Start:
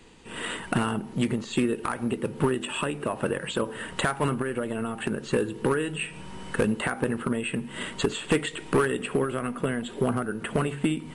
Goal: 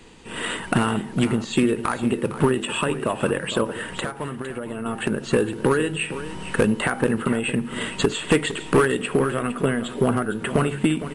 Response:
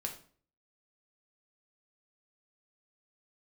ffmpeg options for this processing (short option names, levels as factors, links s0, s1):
-filter_complex "[0:a]asettb=1/sr,asplit=3[s0][s1][s2];[s0]atrim=end=3.654[s3];[s1]atrim=start=3.65:end=4.86,asetpts=PTS-STARTPTS,afade=t=in:d=0.004:c=qsin,afade=t=out:st=1.206:d=0.004:c=qsin,acompressor=threshold=0.0251:ratio=6[s4];[s2]atrim=start=4.856[s5];[s3][s4]acrossfade=d=0.004:c1=hsin:c2=qsin[s6];[s6][s5]acrossfade=d=0.004:c1=qsin:c2=hsin,aecho=1:1:458:0.237,volume=1.78"